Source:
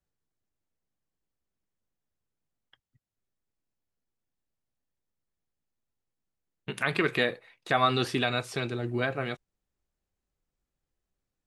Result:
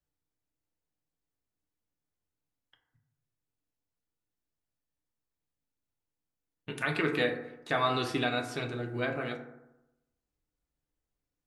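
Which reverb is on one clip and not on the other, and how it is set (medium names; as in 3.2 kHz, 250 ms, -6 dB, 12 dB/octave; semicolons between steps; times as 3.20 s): FDN reverb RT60 0.92 s, low-frequency decay 1.05×, high-frequency decay 0.35×, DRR 3 dB; trim -4.5 dB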